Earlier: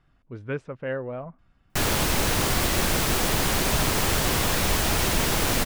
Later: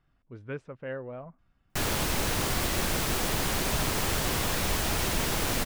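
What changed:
speech −6.5 dB
background −5.0 dB

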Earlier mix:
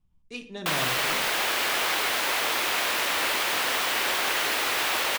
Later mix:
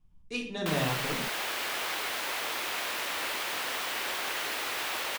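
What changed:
speech: send +8.5 dB
background −7.5 dB

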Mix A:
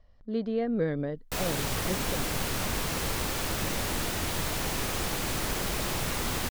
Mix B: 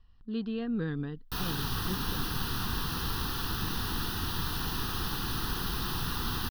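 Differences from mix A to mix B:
speech: add parametric band 2,600 Hz +12.5 dB 0.36 octaves
master: add phaser with its sweep stopped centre 2,200 Hz, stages 6

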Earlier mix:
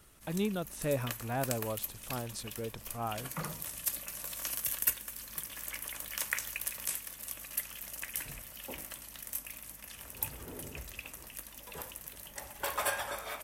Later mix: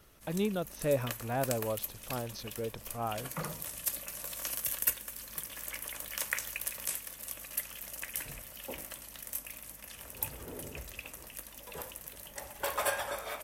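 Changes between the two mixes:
speech: add linear-phase brick-wall low-pass 6,500 Hz
master: add parametric band 530 Hz +4 dB 0.77 octaves

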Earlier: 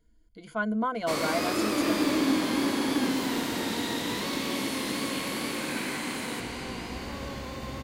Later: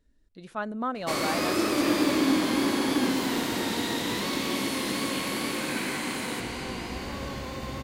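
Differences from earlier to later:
speech: remove EQ curve with evenly spaced ripples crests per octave 1.8, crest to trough 15 dB
reverb: on, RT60 0.35 s

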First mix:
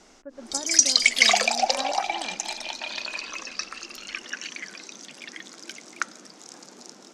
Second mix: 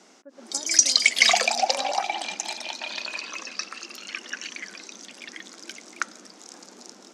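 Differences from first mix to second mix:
speech −6.0 dB
master: add linear-phase brick-wall high-pass 160 Hz

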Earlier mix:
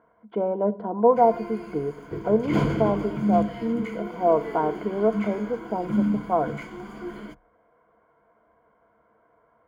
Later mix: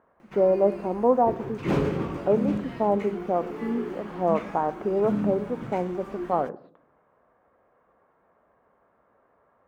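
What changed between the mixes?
background: entry −0.85 s
master: remove EQ curve with evenly spaced ripples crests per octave 1.8, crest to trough 12 dB

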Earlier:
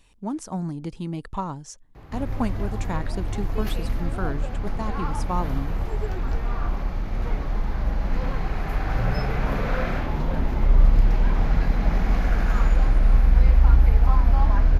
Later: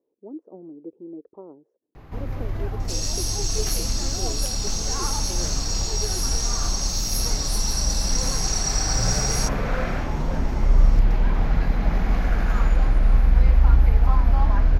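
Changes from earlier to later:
speech: add flat-topped band-pass 410 Hz, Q 2
second sound: unmuted

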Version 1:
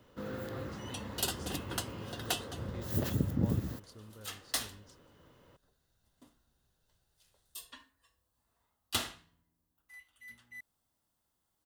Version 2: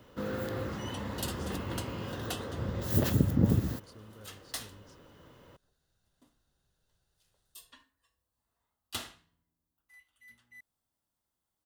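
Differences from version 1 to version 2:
first sound +5.5 dB
second sound −5.0 dB

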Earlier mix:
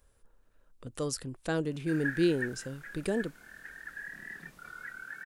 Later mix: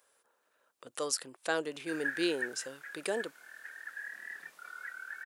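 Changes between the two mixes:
speech +4.0 dB
master: add high-pass filter 590 Hz 12 dB per octave

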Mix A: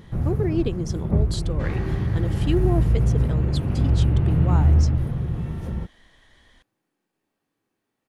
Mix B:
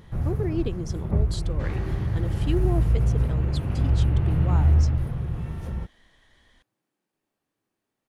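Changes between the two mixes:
speech −4.0 dB
first sound: add parametric band 240 Hz −6 dB 2.2 octaves
second sound: send −8.5 dB

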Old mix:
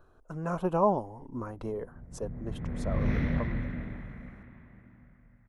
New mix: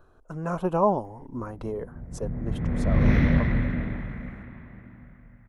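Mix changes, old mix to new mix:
speech +3.0 dB
background +8.5 dB

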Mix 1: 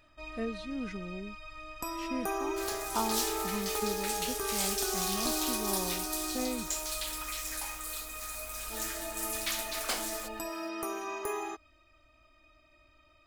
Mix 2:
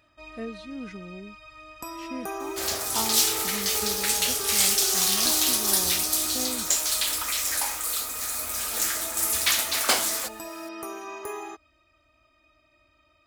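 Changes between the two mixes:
second sound +11.5 dB
master: add high-pass filter 53 Hz

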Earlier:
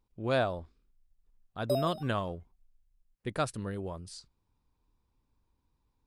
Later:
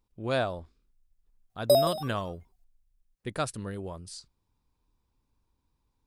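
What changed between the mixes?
background +10.0 dB
master: add high-shelf EQ 4,500 Hz +5.5 dB

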